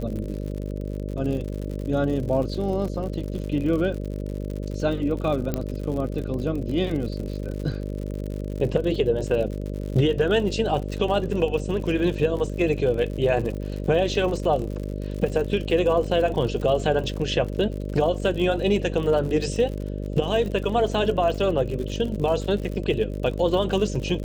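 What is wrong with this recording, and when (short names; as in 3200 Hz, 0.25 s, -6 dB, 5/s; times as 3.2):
buzz 50 Hz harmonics 12 -30 dBFS
crackle 70/s -31 dBFS
5.54 pop -12 dBFS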